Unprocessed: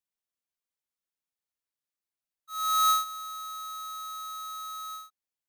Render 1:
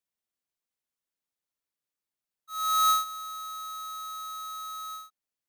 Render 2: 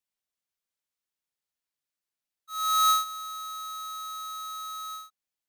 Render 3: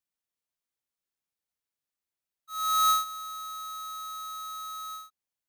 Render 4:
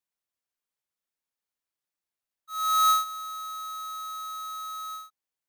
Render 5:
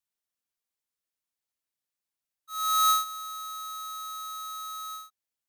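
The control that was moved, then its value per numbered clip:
bell, frequency: 260, 3700, 100, 1000, 13000 Hz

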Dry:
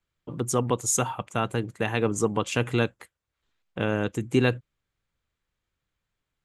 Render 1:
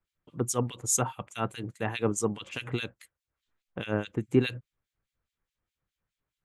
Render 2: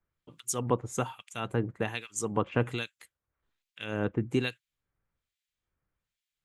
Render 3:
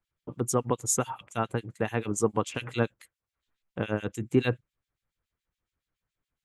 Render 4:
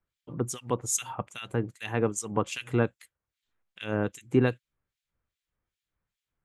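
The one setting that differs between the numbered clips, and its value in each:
harmonic tremolo, rate: 4.8, 1.2, 7.1, 2.5 Hz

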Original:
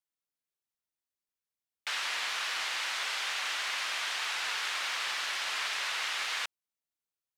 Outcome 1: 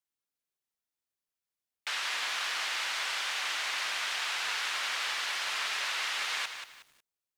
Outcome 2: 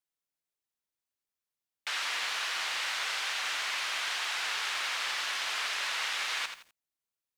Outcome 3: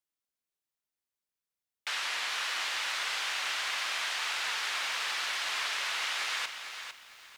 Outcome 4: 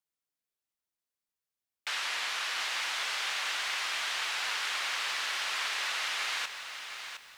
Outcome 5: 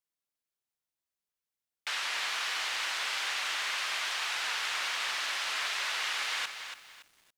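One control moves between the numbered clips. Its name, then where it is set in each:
lo-fi delay, time: 183, 84, 453, 712, 283 ms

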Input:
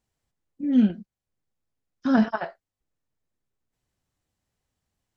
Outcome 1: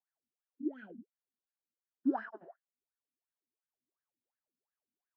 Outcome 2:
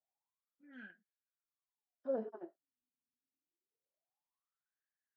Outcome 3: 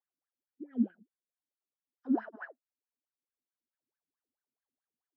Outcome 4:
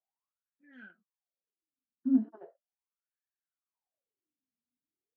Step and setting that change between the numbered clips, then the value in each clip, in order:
wah, rate: 2.8, 0.25, 4.6, 0.38 Hz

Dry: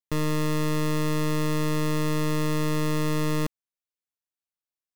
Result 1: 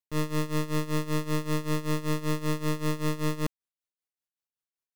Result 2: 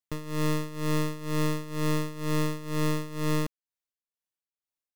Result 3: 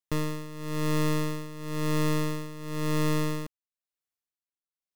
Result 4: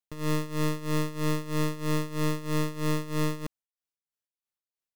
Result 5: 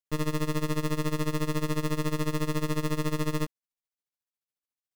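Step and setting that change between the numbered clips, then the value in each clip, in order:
tremolo, rate: 5.2, 2.1, 0.98, 3.1, 14 Hz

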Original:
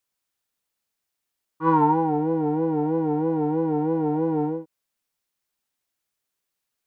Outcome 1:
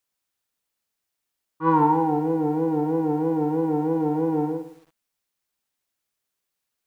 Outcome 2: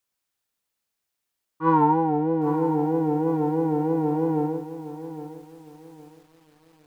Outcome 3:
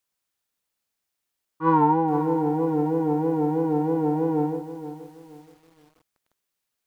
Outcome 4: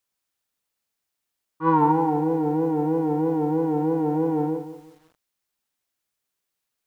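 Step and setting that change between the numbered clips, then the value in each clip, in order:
lo-fi delay, time: 0.109, 0.812, 0.475, 0.178 s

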